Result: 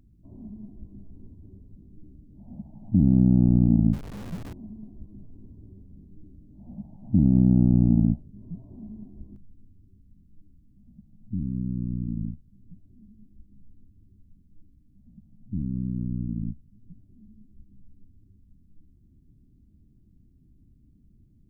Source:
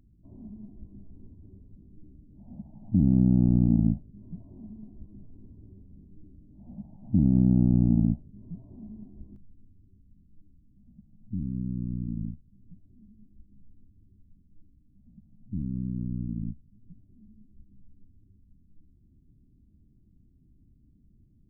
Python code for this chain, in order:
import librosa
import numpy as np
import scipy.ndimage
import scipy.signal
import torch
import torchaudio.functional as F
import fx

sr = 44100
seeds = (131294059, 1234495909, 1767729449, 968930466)

y = fx.zero_step(x, sr, step_db=-37.0, at=(3.93, 4.53))
y = F.gain(torch.from_numpy(y), 2.5).numpy()